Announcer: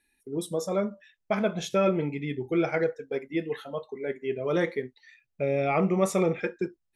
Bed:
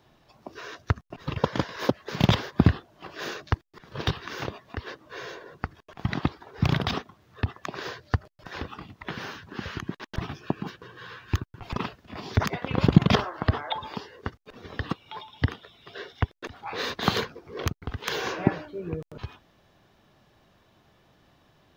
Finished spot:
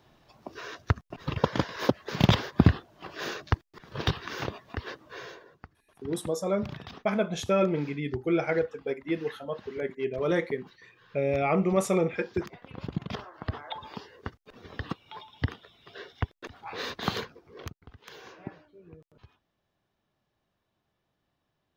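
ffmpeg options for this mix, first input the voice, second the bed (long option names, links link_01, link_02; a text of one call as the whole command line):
ffmpeg -i stem1.wav -i stem2.wav -filter_complex "[0:a]adelay=5750,volume=-0.5dB[link_01];[1:a]volume=11.5dB,afade=type=out:start_time=4.97:duration=0.67:silence=0.158489,afade=type=in:start_time=13.08:duration=1.03:silence=0.251189,afade=type=out:start_time=16.92:duration=1.01:silence=0.211349[link_02];[link_01][link_02]amix=inputs=2:normalize=0" out.wav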